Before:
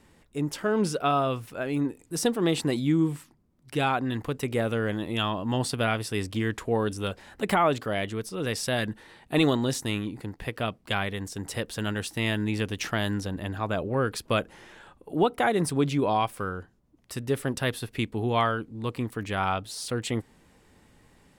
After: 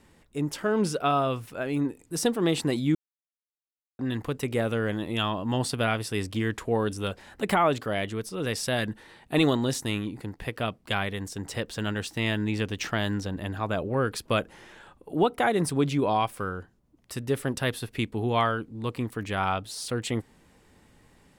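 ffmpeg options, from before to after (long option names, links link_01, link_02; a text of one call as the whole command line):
ffmpeg -i in.wav -filter_complex "[0:a]asettb=1/sr,asplit=3[link_01][link_02][link_03];[link_01]atrim=end=11.354[link_04];[link_02]atrim=start=11.35:end=13.39,asetpts=PTS-STARTPTS,afade=type=in:duration=0.004:curve=qsin,afade=type=out:start_time=2.036:duration=0.004:curve=qsin,equalizer=frequency=11000:width=2.2:gain=-9[link_05];[link_03]atrim=start=13.386[link_06];[link_04][link_05]acrossfade=duration=0.004:curve1=hsin:curve2=qsin[link_07];[link_07][link_06]acrossfade=duration=0.004:curve1=qsin:curve2=hsin,asplit=3[link_08][link_09][link_10];[link_08]atrim=end=2.95,asetpts=PTS-STARTPTS,afade=type=out:start_time=2.946:duration=0.004:curve=hsin[link_11];[link_09]atrim=start=2.95:end=3.99,asetpts=PTS-STARTPTS,volume=0[link_12];[link_10]atrim=start=3.99,asetpts=PTS-STARTPTS,afade=type=in:duration=0.004:curve=hsin[link_13];[link_11][link_12][link_13]concat=n=3:v=0:a=1" out.wav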